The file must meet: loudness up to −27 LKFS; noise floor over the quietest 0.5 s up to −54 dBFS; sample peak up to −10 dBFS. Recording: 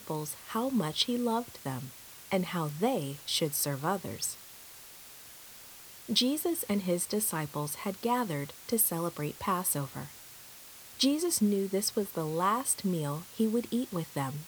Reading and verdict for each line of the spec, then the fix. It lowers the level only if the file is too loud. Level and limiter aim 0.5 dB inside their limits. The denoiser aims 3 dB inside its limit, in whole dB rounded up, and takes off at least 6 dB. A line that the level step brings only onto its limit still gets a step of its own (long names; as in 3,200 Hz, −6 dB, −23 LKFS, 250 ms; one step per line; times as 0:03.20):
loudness −31.0 LKFS: in spec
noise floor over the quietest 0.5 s −50 dBFS: out of spec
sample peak −11.0 dBFS: in spec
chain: broadband denoise 7 dB, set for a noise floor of −50 dBFS